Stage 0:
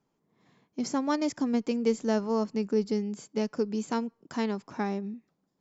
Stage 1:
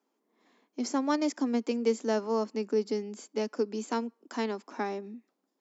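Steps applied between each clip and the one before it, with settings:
Butterworth high-pass 230 Hz 48 dB per octave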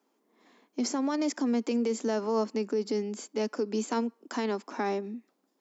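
brickwall limiter −26 dBFS, peak gain reduction 11 dB
level +5 dB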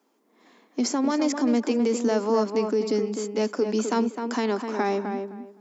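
tape delay 256 ms, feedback 22%, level −4.5 dB, low-pass 2,000 Hz
level +5 dB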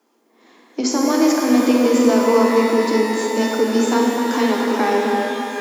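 frequency shifter +13 Hz
reverb with rising layers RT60 2.9 s, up +12 semitones, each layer −8 dB, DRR −1 dB
level +4 dB

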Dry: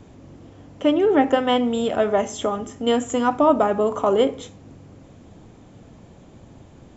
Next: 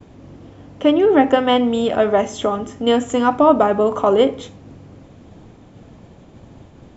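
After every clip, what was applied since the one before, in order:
low-pass filter 6,000 Hz 12 dB per octave
downward expander −44 dBFS
level +4 dB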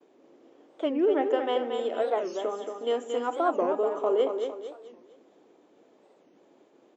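four-pole ladder high-pass 320 Hz, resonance 45%
on a send: repeating echo 228 ms, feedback 38%, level −6.5 dB
on the sum: wow of a warped record 45 rpm, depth 250 cents
level −6.5 dB

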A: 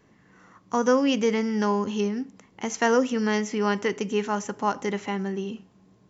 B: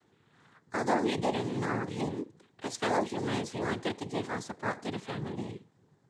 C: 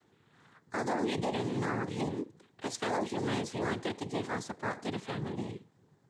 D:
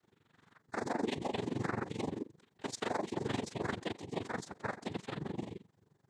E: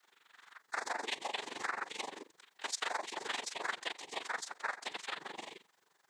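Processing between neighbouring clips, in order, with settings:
cochlear-implant simulation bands 6; level −7.5 dB
brickwall limiter −23 dBFS, peak gain reduction 7.5 dB
amplitude modulation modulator 23 Hz, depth 80%
high-pass filter 1,100 Hz 12 dB per octave; downward compressor 1.5 to 1, threshold −53 dBFS, peak gain reduction 6.5 dB; level +10.5 dB

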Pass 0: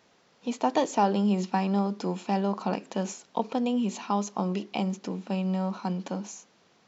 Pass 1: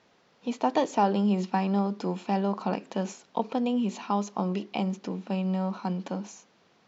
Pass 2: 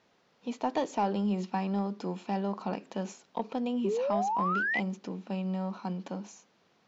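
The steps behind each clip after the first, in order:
Bessel low-pass filter 5,100 Hz
sound drawn into the spectrogram rise, 0:03.84–0:04.80, 370–2,100 Hz −25 dBFS; soft clipping −12 dBFS, distortion −26 dB; level −4.5 dB

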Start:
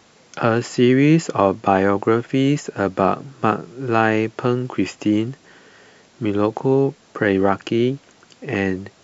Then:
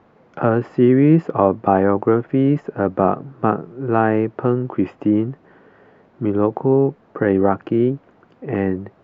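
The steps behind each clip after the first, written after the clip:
low-pass filter 1,200 Hz 12 dB per octave
level +1.5 dB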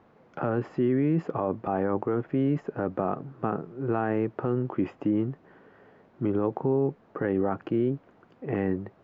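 brickwall limiter −11 dBFS, peak gain reduction 9.5 dB
level −5.5 dB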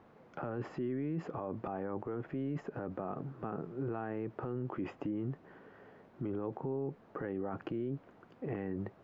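brickwall limiter −27.5 dBFS, peak gain reduction 11 dB
level −1.5 dB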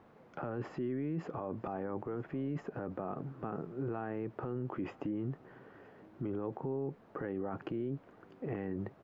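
single-tap delay 967 ms −24 dB

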